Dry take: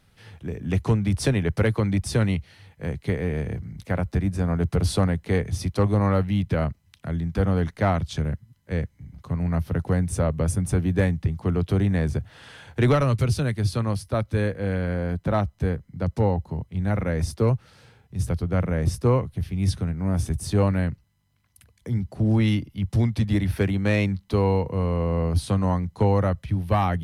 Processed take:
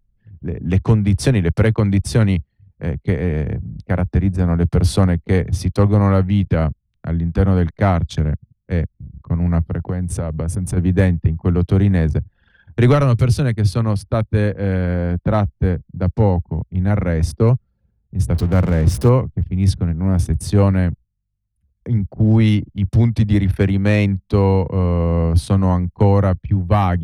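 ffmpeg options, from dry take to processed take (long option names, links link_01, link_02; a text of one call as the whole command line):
ffmpeg -i in.wav -filter_complex "[0:a]asplit=3[link_01][link_02][link_03];[link_01]afade=type=out:start_time=9.67:duration=0.02[link_04];[link_02]acompressor=threshold=-25dB:ratio=4:attack=3.2:release=140:knee=1:detection=peak,afade=type=in:start_time=9.67:duration=0.02,afade=type=out:start_time=10.76:duration=0.02[link_05];[link_03]afade=type=in:start_time=10.76:duration=0.02[link_06];[link_04][link_05][link_06]amix=inputs=3:normalize=0,asettb=1/sr,asplit=3[link_07][link_08][link_09];[link_07]atrim=end=18.344[link_10];[link_08]atrim=start=18.34:end=19.09,asetpts=PTS-STARTPTS,afade=type=in:duration=0.004:curve=qsin,afade=type=out:start_time=0.746:duration=0.004:curve=qsin,aeval=exprs='val(0)+0.5*0.0266*sgn(val(0))':channel_layout=same[link_11];[link_09]atrim=start=19.086[link_12];[link_10][link_11]acrossfade=duration=0.004:curve1=hsin:curve2=qsin[link_13];[link_13][link_12]acrossfade=duration=0.004:curve1=qsin:curve2=hsin,anlmdn=1,lowshelf=frequency=330:gain=4,volume=4dB" out.wav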